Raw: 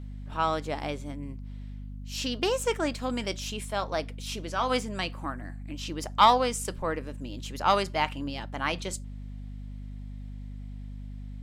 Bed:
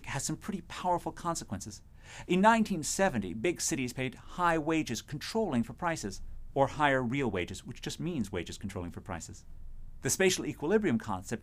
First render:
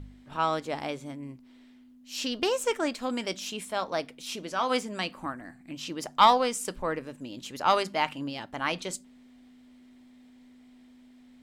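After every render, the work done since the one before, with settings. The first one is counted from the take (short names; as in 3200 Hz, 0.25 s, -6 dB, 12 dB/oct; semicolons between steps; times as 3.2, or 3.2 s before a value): de-hum 50 Hz, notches 4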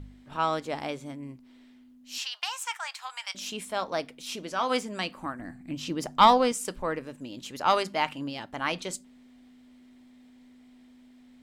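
2.18–3.35 elliptic high-pass 840 Hz, stop band 60 dB; 5.39–6.52 low shelf 340 Hz +9 dB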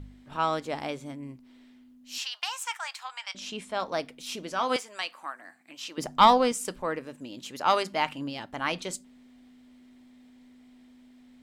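3.03–3.8 air absorption 62 m; 4.76–5.98 HPF 790 Hz; 6.77–7.93 low shelf 84 Hz -11.5 dB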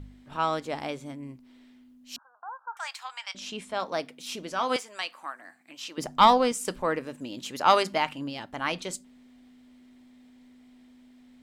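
2.16–2.77 Chebyshev low-pass 1600 Hz, order 10; 3.73–4.26 HPF 120 Hz; 6.67–7.98 gain +3.5 dB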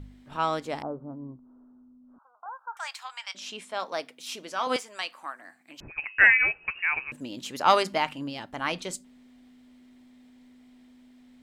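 0.82–2.46 steep low-pass 1400 Hz 72 dB/oct; 3.01–4.67 HPF 490 Hz 6 dB/oct; 5.8–7.12 inverted band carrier 2800 Hz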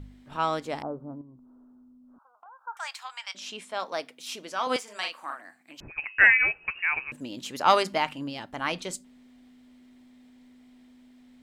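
1.21–2.67 compressor, threshold -47 dBFS; 4.83–5.41 doubler 43 ms -3.5 dB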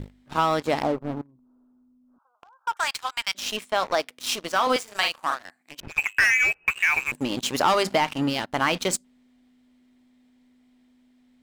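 sample leveller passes 3; compressor 6:1, threshold -18 dBFS, peak gain reduction 9.5 dB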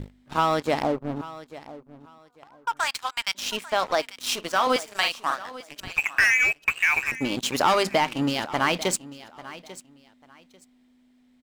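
feedback echo 0.843 s, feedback 22%, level -17 dB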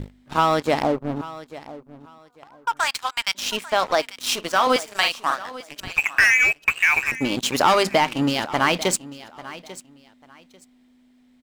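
gain +3.5 dB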